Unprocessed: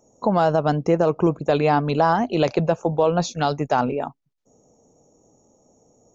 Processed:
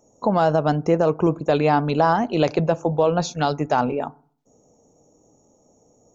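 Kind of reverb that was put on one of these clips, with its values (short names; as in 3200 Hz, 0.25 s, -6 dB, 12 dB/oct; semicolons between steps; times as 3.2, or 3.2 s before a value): FDN reverb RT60 0.48 s, low-frequency decay 1.25×, high-frequency decay 0.3×, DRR 19 dB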